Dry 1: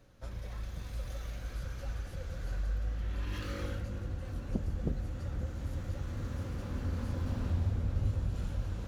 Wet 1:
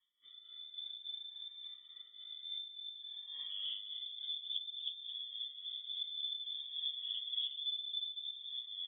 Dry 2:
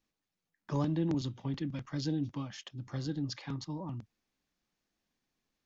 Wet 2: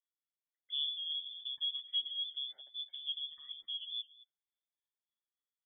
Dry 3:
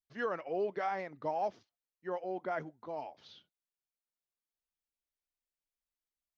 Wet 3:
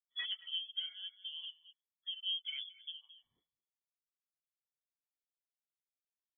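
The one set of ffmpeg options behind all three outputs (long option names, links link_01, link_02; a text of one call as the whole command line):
ffmpeg -i in.wav -af "afftfilt=real='re*pow(10,15/40*sin(2*PI*(2*log(max(b,1)*sr/1024/100)/log(2)-(-0.58)*(pts-256)/sr)))':imag='im*pow(10,15/40*sin(2*PI*(2*log(max(b,1)*sr/1024/100)/log(2)-(-0.58)*(pts-256)/sr)))':win_size=1024:overlap=0.75,asuperstop=centerf=890:order=20:qfactor=1.3,afwtdn=0.02,aecho=1:1:219:0.141,acompressor=threshold=-32dB:ratio=16,flanger=delay=6.8:depth=4.4:regen=1:speed=1.2:shape=triangular,adynamicequalizer=threshold=0.00126:dfrequency=380:dqfactor=2.4:tfrequency=380:tqfactor=2.4:attack=5:release=100:ratio=0.375:range=2:mode=boostabove:tftype=bell,tremolo=f=3.5:d=0.5,equalizer=frequency=230:width_type=o:width=0.66:gain=8,lowpass=frequency=3100:width_type=q:width=0.5098,lowpass=frequency=3100:width_type=q:width=0.6013,lowpass=frequency=3100:width_type=q:width=0.9,lowpass=frequency=3100:width_type=q:width=2.563,afreqshift=-3600,volume=-1.5dB" out.wav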